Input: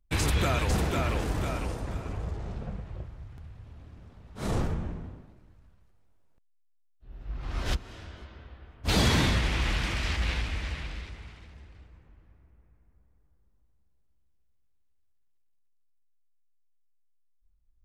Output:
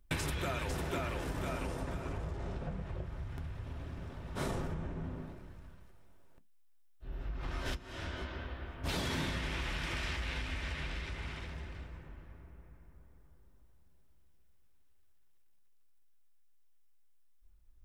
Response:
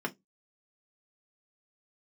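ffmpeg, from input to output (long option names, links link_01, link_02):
-filter_complex "[0:a]acompressor=threshold=-42dB:ratio=6,asplit=2[link_01][link_02];[1:a]atrim=start_sample=2205,highshelf=frequency=5100:gain=11.5[link_03];[link_02][link_03]afir=irnorm=-1:irlink=0,volume=-10dB[link_04];[link_01][link_04]amix=inputs=2:normalize=0,volume=5.5dB"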